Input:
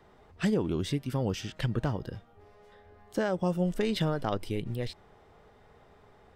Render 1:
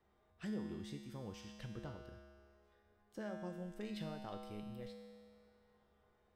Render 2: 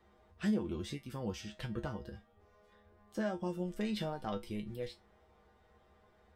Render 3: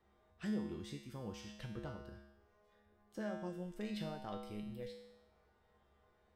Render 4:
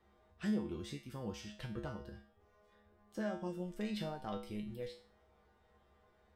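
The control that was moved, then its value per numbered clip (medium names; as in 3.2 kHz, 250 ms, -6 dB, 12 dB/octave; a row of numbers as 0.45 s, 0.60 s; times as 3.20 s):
feedback comb, decay: 2 s, 0.18 s, 0.92 s, 0.42 s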